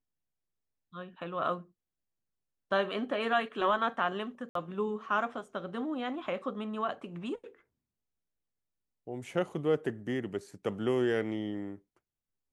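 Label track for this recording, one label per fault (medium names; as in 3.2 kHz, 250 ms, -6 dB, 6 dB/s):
4.490000	4.550000	dropout 63 ms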